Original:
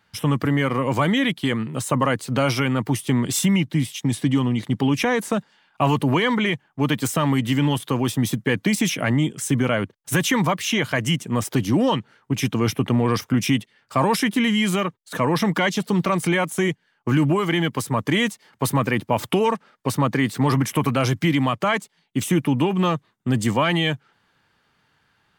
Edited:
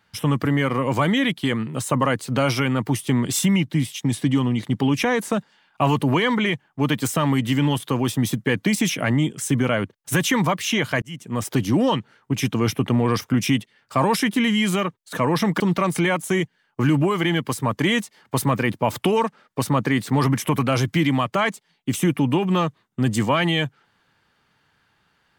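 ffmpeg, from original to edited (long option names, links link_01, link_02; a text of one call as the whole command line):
ffmpeg -i in.wav -filter_complex "[0:a]asplit=3[link_01][link_02][link_03];[link_01]atrim=end=11.02,asetpts=PTS-STARTPTS,afade=type=out:start_time=11.016:duration=0.004:curve=hsin[link_04];[link_02]atrim=start=11.02:end=15.602,asetpts=PTS-STARTPTS,afade=type=in:duration=0.48[link_05];[link_03]atrim=start=15.878[link_06];[link_04][link_05]concat=n=2:v=0:a=1[link_07];[link_07][link_06]acrossfade=duration=0.004:curve1=hsin:curve2=hsin" out.wav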